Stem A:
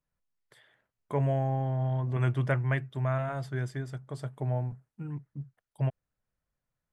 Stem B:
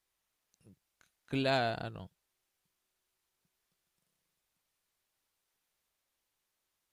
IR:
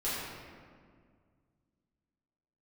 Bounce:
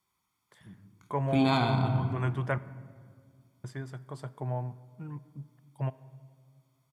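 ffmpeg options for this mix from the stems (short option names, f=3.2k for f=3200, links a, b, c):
-filter_complex "[0:a]volume=-3dB,asplit=3[a][b][c];[a]atrim=end=2.58,asetpts=PTS-STARTPTS,afade=t=out:st=2.576:d=0.004:c=hsin[d];[b]atrim=start=2.58:end=3.64,asetpts=PTS-STARTPTS,volume=0[e];[c]atrim=start=3.64,asetpts=PTS-STARTPTS,afade=t=in:d=0.004:c=hsin[f];[d][e][f]concat=n=3:v=0:a=1,asplit=2[g][h];[h]volume=-23dB[i];[1:a]lowshelf=f=260:g=11,aecho=1:1:0.9:0.95,volume=-3dB,asplit=2[j][k];[k]volume=-9.5dB[l];[2:a]atrim=start_sample=2205[m];[i][l]amix=inputs=2:normalize=0[n];[n][m]afir=irnorm=-1:irlink=0[o];[g][j][o]amix=inputs=3:normalize=0,highpass=100,equalizer=f=1k:w=2.6:g=7.5"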